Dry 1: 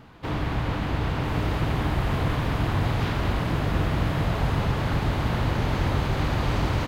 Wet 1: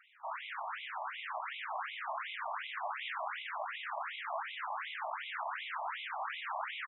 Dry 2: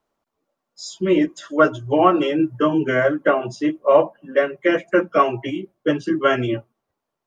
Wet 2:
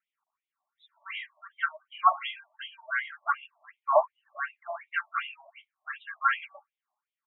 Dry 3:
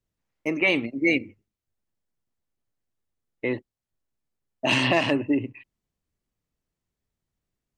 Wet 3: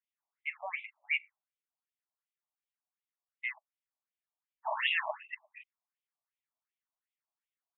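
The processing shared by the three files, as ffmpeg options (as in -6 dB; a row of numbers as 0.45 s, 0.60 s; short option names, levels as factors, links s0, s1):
-af "aresample=8000,aresample=44100,afftfilt=real='re*between(b*sr/1024,830*pow(2900/830,0.5+0.5*sin(2*PI*2.7*pts/sr))/1.41,830*pow(2900/830,0.5+0.5*sin(2*PI*2.7*pts/sr))*1.41)':imag='im*between(b*sr/1024,830*pow(2900/830,0.5+0.5*sin(2*PI*2.7*pts/sr))/1.41,830*pow(2900/830,0.5+0.5*sin(2*PI*2.7*pts/sr))*1.41)':win_size=1024:overlap=0.75,volume=0.75"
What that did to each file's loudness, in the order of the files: -14.0 LU, -11.0 LU, -11.0 LU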